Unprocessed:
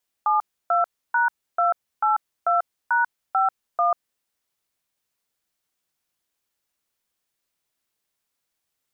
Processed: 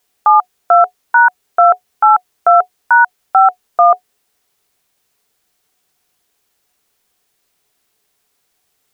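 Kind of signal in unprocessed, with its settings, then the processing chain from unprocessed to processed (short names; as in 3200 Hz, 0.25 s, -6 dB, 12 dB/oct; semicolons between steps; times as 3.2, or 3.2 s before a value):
DTMF "72#282#51", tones 0.141 s, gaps 0.3 s, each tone -19.5 dBFS
small resonant body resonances 420/730 Hz, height 9 dB, ringing for 90 ms; maximiser +21.5 dB; upward expander 1.5:1, over -22 dBFS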